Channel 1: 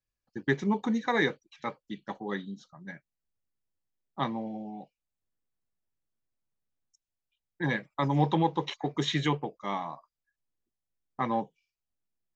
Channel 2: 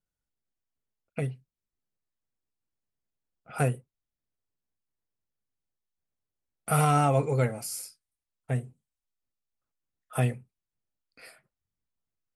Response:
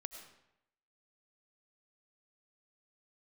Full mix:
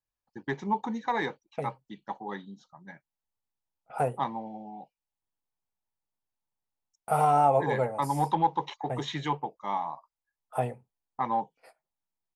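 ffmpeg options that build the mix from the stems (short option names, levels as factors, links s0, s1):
-filter_complex "[0:a]asoftclip=type=tanh:threshold=0.188,volume=0.531[s0];[1:a]agate=range=0.158:threshold=0.00355:ratio=16:detection=peak,equalizer=f=570:t=o:w=1.8:g=10.5,adelay=400,volume=0.282[s1];[s0][s1]amix=inputs=2:normalize=0,equalizer=f=880:w=2.4:g=12.5"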